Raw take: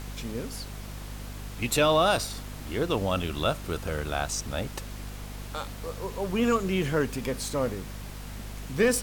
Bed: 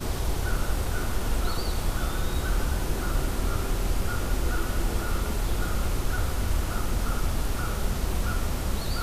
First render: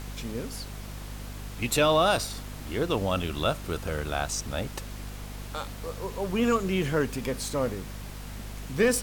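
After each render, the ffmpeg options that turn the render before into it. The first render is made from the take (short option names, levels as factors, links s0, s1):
-af anull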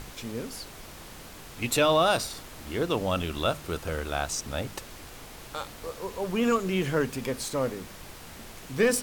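-af "bandreject=f=50:t=h:w=6,bandreject=f=100:t=h:w=6,bandreject=f=150:t=h:w=6,bandreject=f=200:t=h:w=6,bandreject=f=250:t=h:w=6"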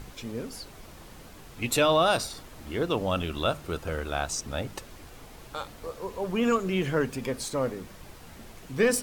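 -af "afftdn=nr=6:nf=-45"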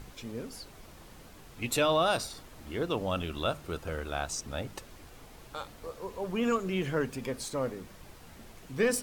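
-af "volume=0.631"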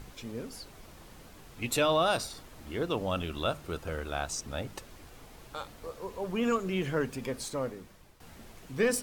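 -filter_complex "[0:a]asplit=2[s0][s1];[s0]atrim=end=8.2,asetpts=PTS-STARTPTS,afade=t=out:st=7.47:d=0.73:silence=0.266073[s2];[s1]atrim=start=8.2,asetpts=PTS-STARTPTS,afade=t=in:d=0.004:c=hsin:silence=0.266073[s3];[s2][s3]concat=n=2:v=0:a=1"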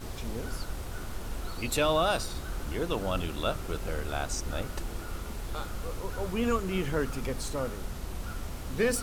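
-filter_complex "[1:a]volume=0.316[s0];[0:a][s0]amix=inputs=2:normalize=0"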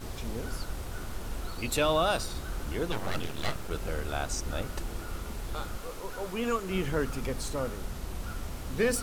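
-filter_complex "[0:a]asettb=1/sr,asplit=3[s0][s1][s2];[s0]atrim=end=1.464[s3];[s1]atrim=start=1.46:end=2.22,asetpts=PTS-STARTPTS,afade=t=in:d=0.004:c=qsin,afade=t=out:st=0.756:d=0.004:c=qsin,aeval=exprs='sgn(val(0))*max(abs(val(0))-0.0015,0)':c=same[s4];[s2]atrim=start=2.216[s5];[s3][s4]acrossfade=d=0.004:c1=hsin:c2=qsin[s6];[s6][s5]acrossfade=d=0.004:c1=qsin:c2=hsin,asplit=3[s7][s8][s9];[s7]afade=t=out:st=2.91:d=0.02[s10];[s8]aeval=exprs='abs(val(0))':c=same,afade=t=in:st=2.91:d=0.02,afade=t=out:st=3.69:d=0.02[s11];[s9]afade=t=in:st=3.69:d=0.02[s12];[s10][s11][s12]amix=inputs=3:normalize=0,asettb=1/sr,asplit=3[s13][s14][s15];[s13]atrim=end=5.774[s16];[s14]atrim=start=5.77:end=6.7,asetpts=PTS-STARTPTS,afade=t=in:d=0.004:c=qsin,afade=t=out:st=0.926:d=0.004:c=qsin,equalizer=f=64:t=o:w=2.8:g=-12[s17];[s15]atrim=start=6.696[s18];[s16][s17]acrossfade=d=0.004:c1=hsin:c2=qsin[s19];[s19][s18]acrossfade=d=0.004:c1=qsin:c2=hsin"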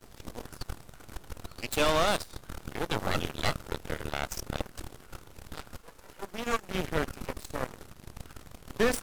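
-af "aeval=exprs='0.178*(cos(1*acos(clip(val(0)/0.178,-1,1)))-cos(1*PI/2))+0.02*(cos(6*acos(clip(val(0)/0.178,-1,1)))-cos(6*PI/2))+0.0282*(cos(7*acos(clip(val(0)/0.178,-1,1)))-cos(7*PI/2))':c=same"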